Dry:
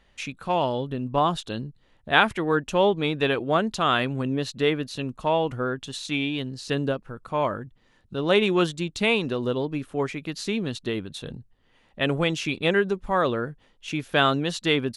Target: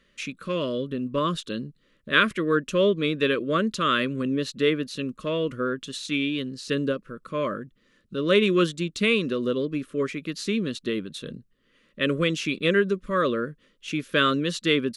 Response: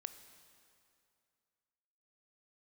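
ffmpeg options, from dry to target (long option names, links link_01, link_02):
-af "asuperstop=centerf=800:order=8:qfactor=1.8,lowshelf=frequency=140:width_type=q:width=1.5:gain=-7.5"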